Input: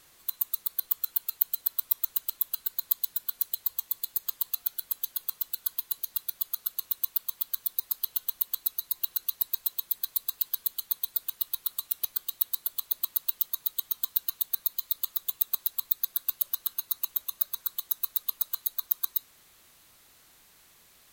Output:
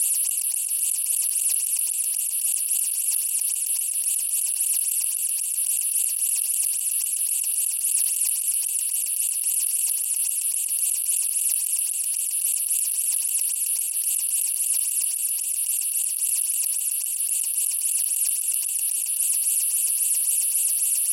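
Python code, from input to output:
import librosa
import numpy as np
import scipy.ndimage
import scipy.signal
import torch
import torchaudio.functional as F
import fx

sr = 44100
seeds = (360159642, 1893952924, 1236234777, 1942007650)

y = fx.bin_compress(x, sr, power=0.2)
y = fx.high_shelf(y, sr, hz=7300.0, db=4.0)
y = fx.over_compress(y, sr, threshold_db=-22.0, ratio=-1.0)
y = scipy.signal.lfilter([1.0, -0.9], [1.0], y)
y = fx.formant_shift(y, sr, semitones=-6)
y = fx.phaser_stages(y, sr, stages=8, low_hz=250.0, high_hz=1800.0, hz=3.7, feedback_pct=5)
y = y + 10.0 ** (-11.0 / 20.0) * np.pad(y, (int(604 * sr / 1000.0), 0))[:len(y)]
y = fx.sustainer(y, sr, db_per_s=26.0)
y = F.gain(torch.from_numpy(y), -3.5).numpy()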